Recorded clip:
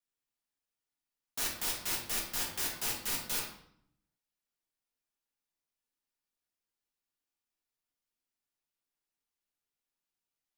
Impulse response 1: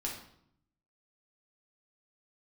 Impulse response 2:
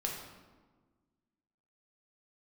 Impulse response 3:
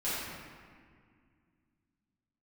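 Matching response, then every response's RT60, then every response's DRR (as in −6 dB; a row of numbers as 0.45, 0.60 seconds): 1; 0.70, 1.4, 2.0 seconds; −2.5, −1.5, −12.5 decibels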